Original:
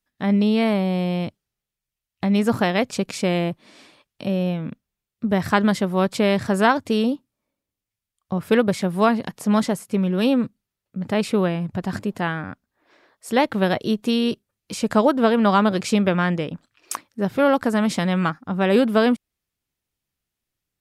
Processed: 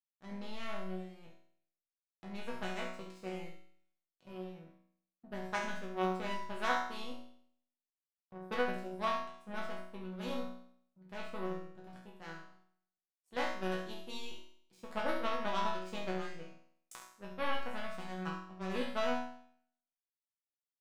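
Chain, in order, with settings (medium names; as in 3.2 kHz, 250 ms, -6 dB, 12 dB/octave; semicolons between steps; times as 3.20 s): hum notches 60/120/180/240 Hz; power-law waveshaper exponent 2; chord resonator B2 sus4, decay 0.61 s; delay 70 ms -8 dB; trim +7.5 dB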